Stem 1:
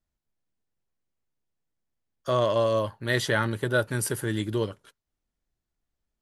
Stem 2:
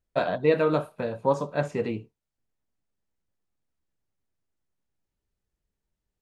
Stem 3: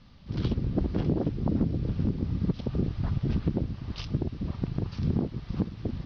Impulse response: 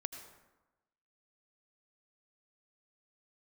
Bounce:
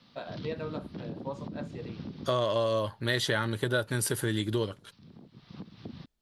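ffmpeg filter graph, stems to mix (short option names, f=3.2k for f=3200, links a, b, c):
-filter_complex "[0:a]volume=2dB,asplit=2[a][b];[1:a]volume=-15dB[c];[2:a]highpass=190,acrossover=split=250|540[d][e][f];[d]acompressor=threshold=-37dB:ratio=4[g];[e]acompressor=threshold=-54dB:ratio=4[h];[f]acompressor=threshold=-50dB:ratio=4[i];[g][h][i]amix=inputs=3:normalize=0,volume=-1.5dB[j];[b]apad=whole_len=267117[k];[j][k]sidechaincompress=threshold=-44dB:ratio=5:attack=28:release=734[l];[a][c][l]amix=inputs=3:normalize=0,equalizer=f=3.8k:w=2.2:g=6,acompressor=threshold=-26dB:ratio=3"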